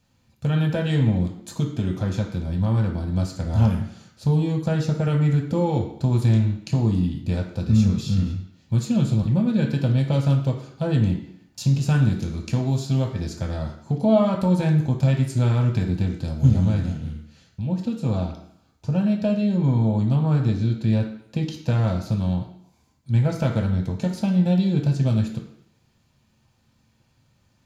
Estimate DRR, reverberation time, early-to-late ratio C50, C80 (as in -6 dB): 1.5 dB, 0.70 s, 7.0 dB, 10.0 dB